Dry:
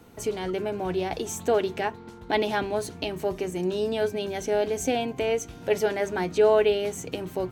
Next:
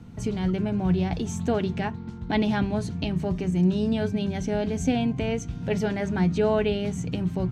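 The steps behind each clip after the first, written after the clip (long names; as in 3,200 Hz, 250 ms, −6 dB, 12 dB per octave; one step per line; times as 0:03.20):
low-pass filter 6,900 Hz 12 dB per octave
low shelf with overshoot 270 Hz +12.5 dB, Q 1.5
level −2 dB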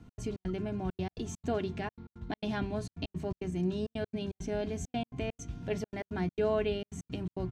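comb filter 2.9 ms, depth 37%
gate pattern "x.xx.xxxxx." 167 BPM −60 dB
level −7.5 dB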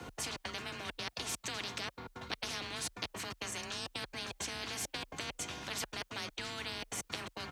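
frequency shifter +28 Hz
every bin compressed towards the loudest bin 10 to 1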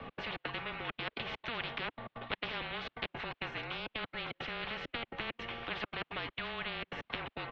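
single-sideband voice off tune −260 Hz 330–3,600 Hz
level +3.5 dB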